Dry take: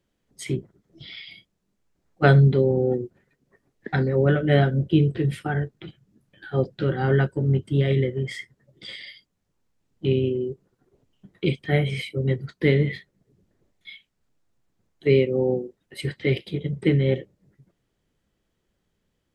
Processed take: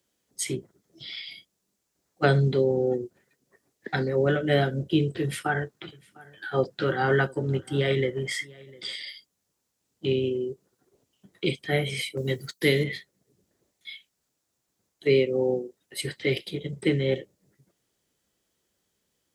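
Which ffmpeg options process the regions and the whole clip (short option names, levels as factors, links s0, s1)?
-filter_complex "[0:a]asettb=1/sr,asplit=3[s0][s1][s2];[s0]atrim=end=5.224[s3];[s1]atrim=start=5.22:end=8.88,asetpts=PTS-STARTPTS,afade=t=in:d=0.004:c=qsin,afade=t=out:st=3.656:d=0.004:c=qsin,equalizer=f=1200:w=0.8:g=7,aecho=1:1:702:0.0668,atrim=end_sample=161406[s4];[s2]atrim=start=8.876[s5];[s3][s4]acrossfade=d=0.004:c1=hsin:c2=qsin[s6];[s6][s5]acrossfade=d=0.004:c1=qsin:c2=hsin,asettb=1/sr,asplit=3[s7][s8][s9];[s7]atrim=end=12.174[s10];[s8]atrim=start=12.17:end=12.84,asetpts=PTS-STARTPTS,afade=t=in:d=0.004:c=qsin,afade=t=out:st=0.666:d=0.004:c=qsin,aemphasis=mode=production:type=75kf,agate=range=0.316:threshold=0.01:ratio=16:release=100:detection=peak[s11];[s9]atrim=start=12.836[s12];[s10][s11]acrossfade=d=0.004:c1=hsin:c2=qsin[s13];[s13][s12]acrossfade=d=0.004:c1=qsin:c2=hsin,acrossover=split=480[s14][s15];[s15]acompressor=threshold=0.0891:ratio=2.5[s16];[s14][s16]amix=inputs=2:normalize=0,highpass=56,bass=f=250:g=-7,treble=f=4000:g=11,volume=0.891"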